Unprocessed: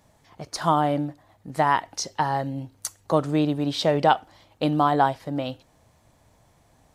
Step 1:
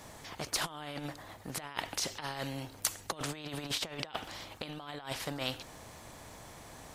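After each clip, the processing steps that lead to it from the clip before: dynamic EQ 2900 Hz, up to +7 dB, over -44 dBFS, Q 1.3; negative-ratio compressor -28 dBFS, ratio -0.5; spectral compressor 2:1; gain -6 dB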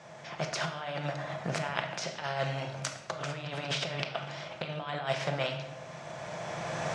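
recorder AGC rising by 12 dB/s; speaker cabinet 140–6300 Hz, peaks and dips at 150 Hz +9 dB, 280 Hz -9 dB, 630 Hz +9 dB, 1500 Hz +5 dB, 2400 Hz +3 dB, 4300 Hz -5 dB; shoebox room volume 500 m³, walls mixed, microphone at 0.82 m; gain -3 dB

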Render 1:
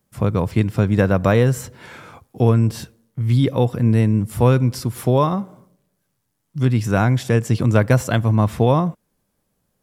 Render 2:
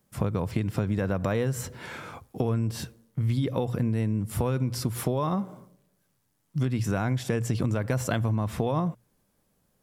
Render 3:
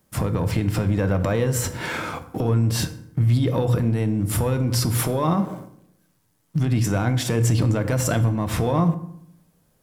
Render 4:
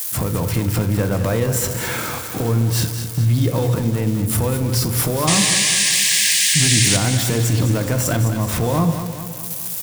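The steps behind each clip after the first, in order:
notches 60/120 Hz; limiter -9 dBFS, peak gain reduction 6.5 dB; compressor, threshold -23 dBFS, peak gain reduction 9.5 dB
sample leveller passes 1; limiter -22 dBFS, peak gain reduction 10 dB; reverb RT60 0.70 s, pre-delay 3 ms, DRR 8.5 dB; gain +7.5 dB
switching spikes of -21 dBFS; painted sound noise, 5.27–6.97, 1600–10000 Hz -19 dBFS; on a send: feedback echo 0.208 s, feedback 57%, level -9.5 dB; on the sum: gain +1.5 dB

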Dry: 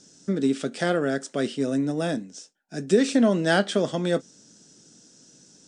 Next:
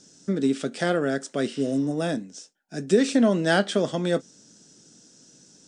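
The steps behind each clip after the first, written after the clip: spectral repair 1.53–1.9, 870–6100 Hz both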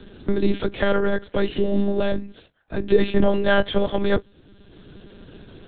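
monotone LPC vocoder at 8 kHz 200 Hz; three-band squash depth 40%; gain +4.5 dB

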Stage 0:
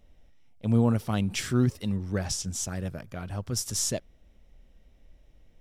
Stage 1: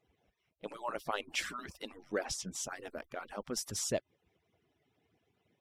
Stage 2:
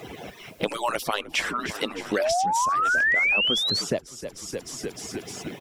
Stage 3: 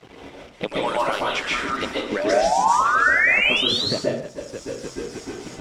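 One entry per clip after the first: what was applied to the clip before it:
median-filter separation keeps percussive; tone controls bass -9 dB, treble -8 dB
frequency-shifting echo 0.305 s, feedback 53%, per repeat -57 Hz, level -17 dB; painted sound rise, 2.19–3.82, 570–4700 Hz -29 dBFS; three-band squash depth 100%; gain +7 dB
crossover distortion -41.5 dBFS; air absorption 62 m; plate-style reverb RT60 0.58 s, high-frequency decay 0.75×, pre-delay 0.115 s, DRR -4.5 dB

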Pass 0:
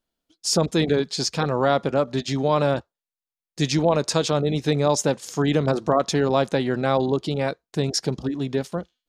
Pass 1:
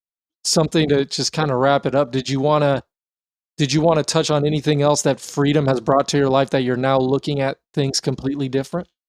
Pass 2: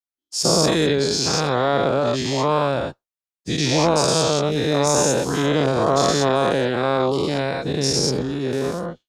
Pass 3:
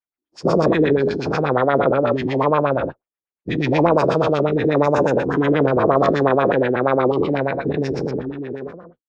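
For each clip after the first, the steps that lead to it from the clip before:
expander -36 dBFS; gain +4 dB
spectral dilation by 0.24 s; gain -7.5 dB
ending faded out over 1.47 s; LFO low-pass sine 8.3 Hz 310–2400 Hz

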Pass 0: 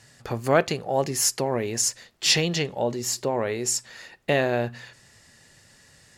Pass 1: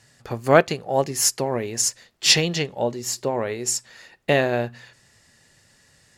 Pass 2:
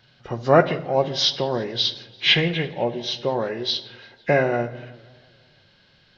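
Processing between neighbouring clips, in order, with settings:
upward expander 1.5:1, over -32 dBFS; gain +5.5 dB
nonlinear frequency compression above 1200 Hz 1.5:1; reverb RT60 0.85 s, pre-delay 6 ms, DRR 9.5 dB; warbling echo 0.17 s, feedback 60%, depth 184 cents, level -24 dB

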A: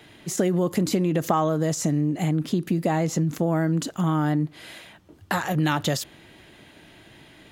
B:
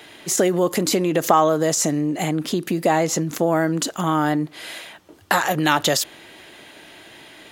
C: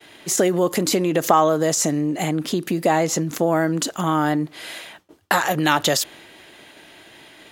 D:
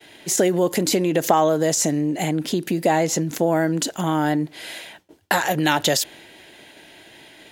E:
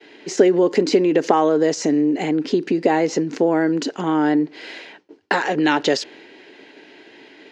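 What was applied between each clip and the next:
tone controls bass -13 dB, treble +2 dB; gain +7.5 dB
expander -41 dBFS
bell 1200 Hz -11 dB 0.24 oct
speaker cabinet 230–5200 Hz, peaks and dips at 270 Hz +7 dB, 420 Hz +9 dB, 650 Hz -5 dB, 3500 Hz -7 dB; gain +1 dB

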